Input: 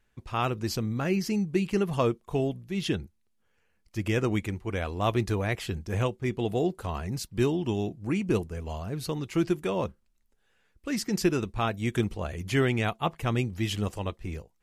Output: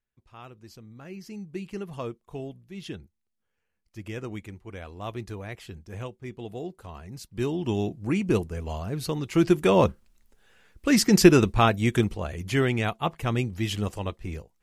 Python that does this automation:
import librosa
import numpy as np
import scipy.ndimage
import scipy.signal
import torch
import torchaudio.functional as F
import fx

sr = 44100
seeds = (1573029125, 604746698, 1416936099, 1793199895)

y = fx.gain(x, sr, db=fx.line((0.85, -17.5), (1.57, -9.0), (7.09, -9.0), (7.75, 2.5), (9.25, 2.5), (9.75, 10.0), (11.48, 10.0), (12.25, 1.0)))